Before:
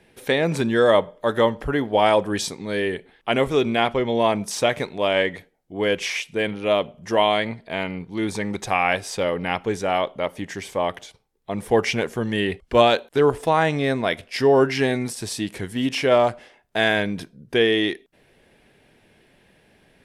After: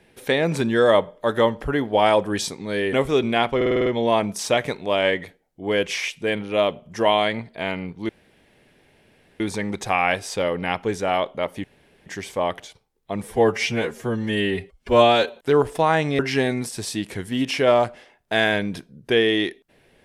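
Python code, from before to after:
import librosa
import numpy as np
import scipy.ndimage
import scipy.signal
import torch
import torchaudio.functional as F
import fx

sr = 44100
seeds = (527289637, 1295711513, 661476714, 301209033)

y = fx.edit(x, sr, fx.cut(start_s=2.93, length_s=0.42),
    fx.stutter(start_s=3.98, slice_s=0.05, count=7),
    fx.insert_room_tone(at_s=8.21, length_s=1.31),
    fx.insert_room_tone(at_s=10.45, length_s=0.42),
    fx.stretch_span(start_s=11.62, length_s=1.42, factor=1.5),
    fx.cut(start_s=13.87, length_s=0.76), tone=tone)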